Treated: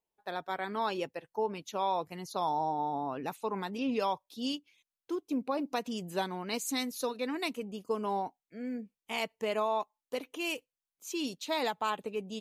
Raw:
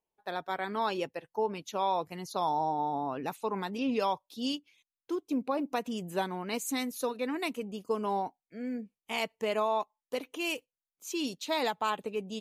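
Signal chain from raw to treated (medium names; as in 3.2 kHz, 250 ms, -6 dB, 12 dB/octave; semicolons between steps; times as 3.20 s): 5.52–7.55 s: peaking EQ 4.7 kHz +6 dB 0.86 oct; trim -1.5 dB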